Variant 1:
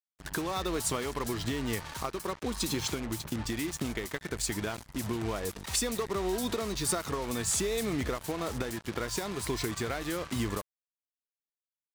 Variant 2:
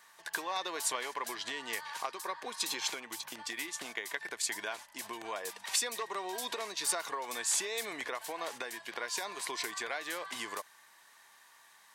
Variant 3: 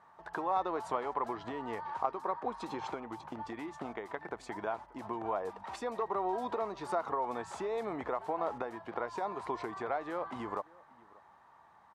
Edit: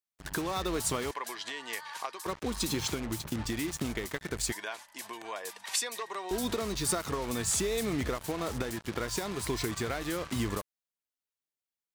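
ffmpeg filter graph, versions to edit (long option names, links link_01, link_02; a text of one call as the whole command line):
ffmpeg -i take0.wav -i take1.wav -filter_complex "[1:a]asplit=2[link_01][link_02];[0:a]asplit=3[link_03][link_04][link_05];[link_03]atrim=end=1.112[link_06];[link_01]atrim=start=1.108:end=2.262[link_07];[link_04]atrim=start=2.258:end=4.522[link_08];[link_02]atrim=start=4.518:end=6.312[link_09];[link_05]atrim=start=6.308[link_10];[link_06][link_07]acrossfade=duration=0.004:curve1=hsin:curve2=hsin[link_11];[link_11][link_08]acrossfade=duration=0.004:curve1=hsin:curve2=hsin[link_12];[link_12][link_09]acrossfade=duration=0.004:curve1=hsin:curve2=hsin[link_13];[link_13][link_10]acrossfade=duration=0.004:curve1=hsin:curve2=hsin" out.wav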